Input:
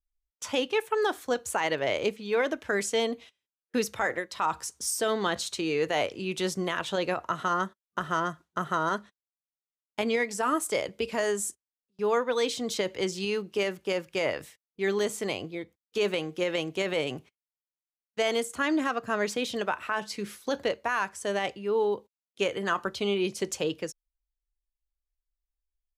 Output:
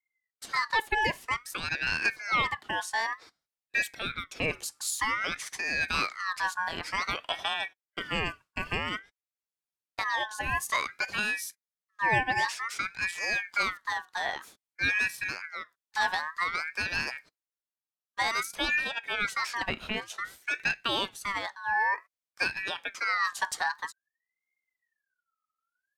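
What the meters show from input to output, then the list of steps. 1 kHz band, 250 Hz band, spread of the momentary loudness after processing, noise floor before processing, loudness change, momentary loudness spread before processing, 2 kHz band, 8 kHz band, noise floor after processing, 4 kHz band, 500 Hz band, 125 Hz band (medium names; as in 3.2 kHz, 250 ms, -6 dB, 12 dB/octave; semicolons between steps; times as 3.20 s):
+0.5 dB, -11.0 dB, 8 LU, under -85 dBFS, -0.5 dB, 6 LU, +5.5 dB, -3.0 dB, under -85 dBFS, +0.5 dB, -14.0 dB, -2.5 dB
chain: rotary cabinet horn 0.8 Hz; ring modulator with a swept carrier 1.7 kHz, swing 25%, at 0.53 Hz; trim +3 dB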